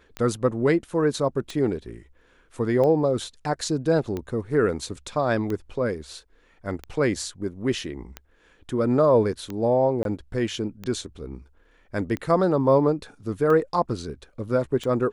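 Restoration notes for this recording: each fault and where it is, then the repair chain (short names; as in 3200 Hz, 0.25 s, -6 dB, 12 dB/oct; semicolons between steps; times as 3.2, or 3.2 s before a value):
tick 45 rpm -18 dBFS
10.03–10.05 gap 22 ms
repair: de-click; interpolate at 10.03, 22 ms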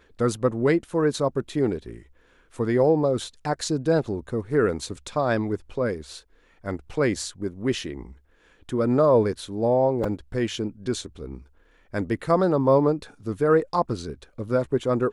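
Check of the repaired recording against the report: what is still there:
none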